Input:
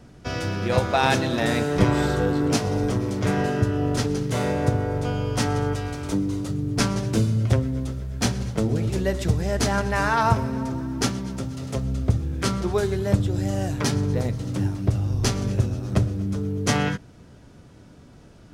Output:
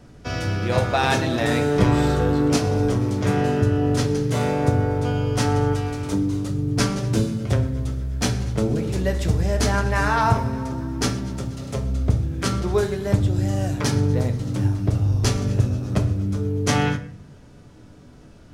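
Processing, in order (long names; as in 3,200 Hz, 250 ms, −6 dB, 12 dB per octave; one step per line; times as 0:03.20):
rectangular room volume 69 cubic metres, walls mixed, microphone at 0.36 metres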